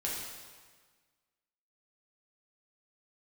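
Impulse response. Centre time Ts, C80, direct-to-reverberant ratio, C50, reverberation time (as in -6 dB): 83 ms, 2.5 dB, -5.5 dB, 0.5 dB, 1.5 s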